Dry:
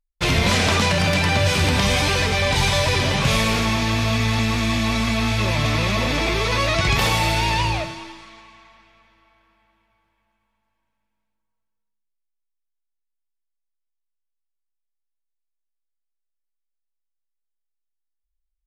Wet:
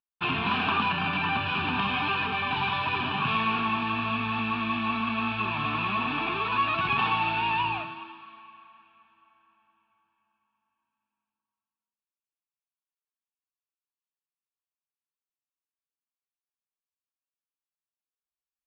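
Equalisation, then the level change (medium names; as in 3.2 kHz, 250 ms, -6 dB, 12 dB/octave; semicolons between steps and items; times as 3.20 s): cabinet simulation 190–2900 Hz, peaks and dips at 260 Hz +4 dB, 430 Hz +4 dB, 770 Hz +5 dB, 1.1 kHz +6 dB, 1.8 kHz +6 dB, 2.6 kHz +8 dB; static phaser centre 2 kHz, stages 6; -6.0 dB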